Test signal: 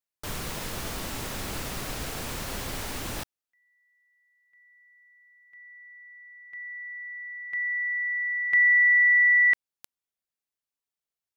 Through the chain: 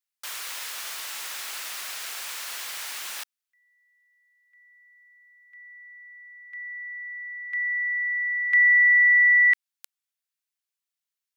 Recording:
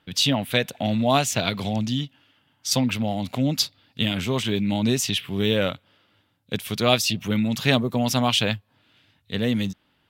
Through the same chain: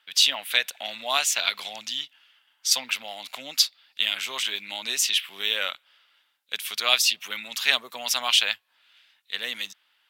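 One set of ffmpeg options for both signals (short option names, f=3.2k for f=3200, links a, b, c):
-af "highpass=1.4k,volume=3dB"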